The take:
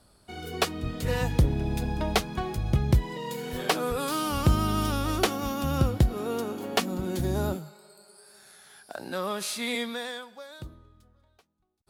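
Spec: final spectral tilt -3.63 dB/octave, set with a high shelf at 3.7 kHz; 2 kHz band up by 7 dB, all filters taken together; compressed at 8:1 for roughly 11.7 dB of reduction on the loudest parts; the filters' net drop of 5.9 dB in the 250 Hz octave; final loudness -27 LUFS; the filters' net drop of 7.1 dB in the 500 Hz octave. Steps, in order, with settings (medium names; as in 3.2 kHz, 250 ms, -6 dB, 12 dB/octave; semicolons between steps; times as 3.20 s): peaking EQ 250 Hz -6.5 dB; peaking EQ 500 Hz -7.5 dB; peaking EQ 2 kHz +7.5 dB; treble shelf 3.7 kHz +6.5 dB; compression 8:1, threshold -29 dBFS; trim +7 dB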